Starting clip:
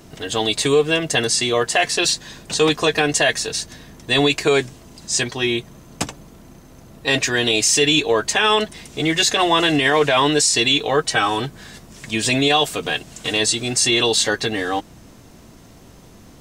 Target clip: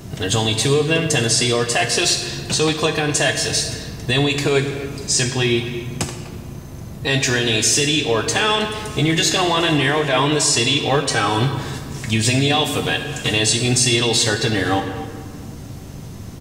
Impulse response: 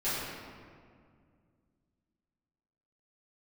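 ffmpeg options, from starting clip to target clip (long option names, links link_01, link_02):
-filter_complex "[0:a]equalizer=frequency=97:width=0.83:gain=11.5,alimiter=limit=-12.5dB:level=0:latency=1:release=345,asplit=2[link_01][link_02];[link_02]adelay=250,highpass=300,lowpass=3400,asoftclip=type=hard:threshold=-22.5dB,volume=-15dB[link_03];[link_01][link_03]amix=inputs=2:normalize=0,asplit=2[link_04][link_05];[1:a]atrim=start_sample=2205,highshelf=frequency=3400:gain=11[link_06];[link_05][link_06]afir=irnorm=-1:irlink=0,volume=-15.5dB[link_07];[link_04][link_07]amix=inputs=2:normalize=0,volume=3.5dB"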